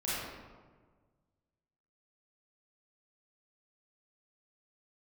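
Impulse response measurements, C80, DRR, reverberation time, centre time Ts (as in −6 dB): −0.5 dB, −10.5 dB, 1.5 s, 112 ms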